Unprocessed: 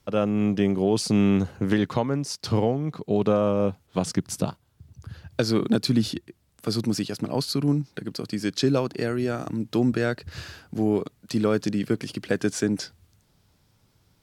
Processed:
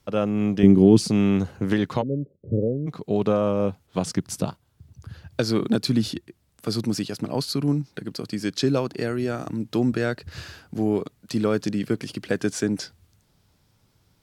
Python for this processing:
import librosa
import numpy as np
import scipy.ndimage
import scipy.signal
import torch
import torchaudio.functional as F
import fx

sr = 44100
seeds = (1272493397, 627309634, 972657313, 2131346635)

y = fx.low_shelf_res(x, sr, hz=420.0, db=9.0, q=1.5, at=(0.63, 1.09))
y = fx.cheby1_lowpass(y, sr, hz=570.0, order=6, at=(2.01, 2.86), fade=0.02)